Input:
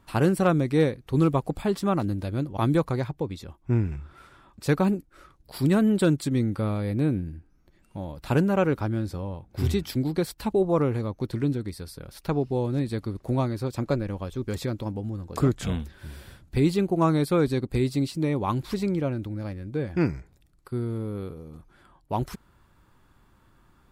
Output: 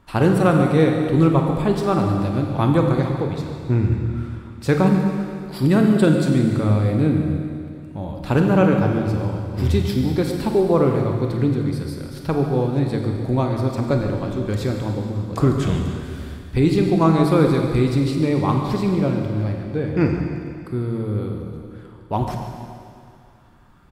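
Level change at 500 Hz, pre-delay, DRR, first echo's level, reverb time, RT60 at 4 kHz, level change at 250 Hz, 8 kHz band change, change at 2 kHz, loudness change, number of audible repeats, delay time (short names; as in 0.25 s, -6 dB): +6.5 dB, 26 ms, 2.0 dB, -14.0 dB, 2.3 s, 2.3 s, +7.0 dB, +2.0 dB, +6.0 dB, +6.5 dB, 1, 0.143 s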